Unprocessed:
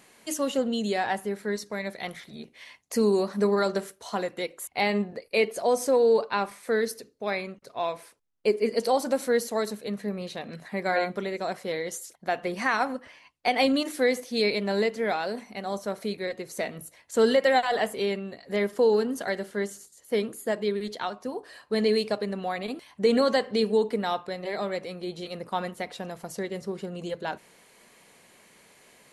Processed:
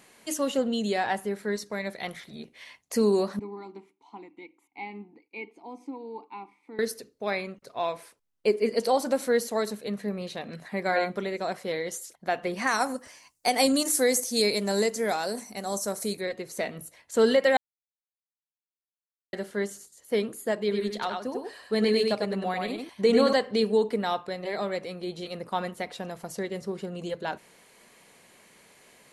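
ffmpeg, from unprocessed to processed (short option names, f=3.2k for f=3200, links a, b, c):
-filter_complex "[0:a]asettb=1/sr,asplit=3[a][b][c];[a]atrim=end=3.394[d];[b]atrim=start=3.39:end=6.79,asetpts=PTS-STARTPTS,afade=t=in:d=0.004:c=qsin,afade=t=out:st=3.396:d=0.004:c=qsin,asplit=3[e][f][g];[e]bandpass=f=300:t=q:w=8,volume=0dB[h];[f]bandpass=f=870:t=q:w=8,volume=-6dB[i];[g]bandpass=f=2.24k:t=q:w=8,volume=-9dB[j];[h][i][j]amix=inputs=3:normalize=0[k];[c]atrim=start=6.786[l];[d][k]acrossfade=d=0.004:c1=hsin:c2=qsin[m];[m][l]acrossfade=d=0.004:c1=qsin:c2=hsin,asettb=1/sr,asplit=3[n][o][p];[n]atrim=end=12.674[q];[o]atrim=start=12.67:end=16.21,asetpts=PTS-STARTPTS,afade=t=in:d=0.004:c=qsin,afade=t=out:st=3.536:d=0.004:c=qsin,highshelf=f=4.7k:t=q:w=1.5:g=14[r];[p]atrim=start=16.206[s];[q][r]acrossfade=d=0.004:c1=hsin:c2=qsin[t];[t][s]acrossfade=d=0.004:c1=qsin:c2=hsin,asettb=1/sr,asplit=3[u][v][w];[u]atrim=end=20.594[x];[v]atrim=start=20.59:end=23.33,asetpts=PTS-STARTPTS,afade=t=in:d=0.004:c=qsin,afade=t=out:st=2.736:d=0.004:c=qsin,aecho=1:1:98:0.631,atrim=end_sample=120834[y];[w]atrim=start=23.326[z];[x][y]acrossfade=d=0.004:c1=hsin:c2=qsin[aa];[aa][z]acrossfade=d=0.004:c1=qsin:c2=hsin,asplit=3[ab][ac][ad];[ab]atrim=end=17.57,asetpts=PTS-STARTPTS,afade=t=out:st=17.566:d=0.004:c=hsin[ae];[ac]atrim=start=17.57:end=19.33,asetpts=PTS-STARTPTS,volume=0[af];[ad]atrim=start=19.33,asetpts=PTS-STARTPTS,afade=t=in:d=0.004:c=hsin[ag];[ae][af][ag]concat=n=3:v=0:a=1"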